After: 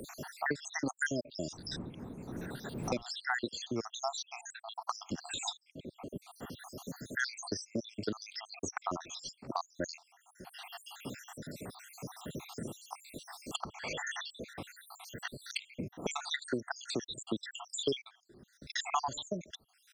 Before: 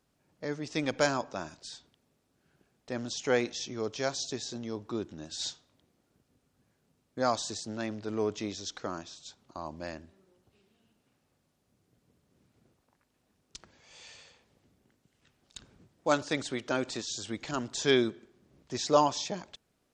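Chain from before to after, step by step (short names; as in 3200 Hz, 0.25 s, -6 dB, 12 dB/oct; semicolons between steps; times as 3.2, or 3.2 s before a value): random spectral dropouts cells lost 77%; 1.51–3.01 wind noise 190 Hz -58 dBFS; notch 3000 Hz, Q 13; three-band squash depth 100%; gain +4.5 dB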